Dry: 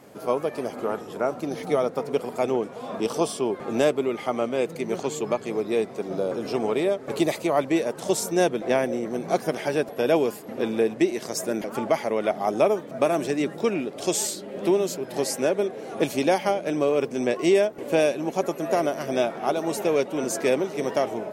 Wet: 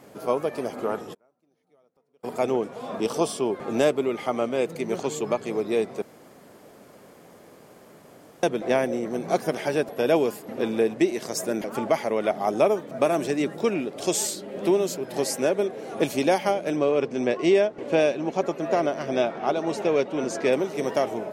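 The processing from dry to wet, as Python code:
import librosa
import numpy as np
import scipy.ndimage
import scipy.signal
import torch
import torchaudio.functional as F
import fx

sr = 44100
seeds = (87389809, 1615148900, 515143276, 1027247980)

y = fx.gate_flip(x, sr, shuts_db=-29.0, range_db=-40, at=(1.13, 2.23), fade=0.02)
y = fx.lowpass(y, sr, hz=5300.0, slope=12, at=(16.76, 20.53))
y = fx.edit(y, sr, fx.room_tone_fill(start_s=6.02, length_s=2.41), tone=tone)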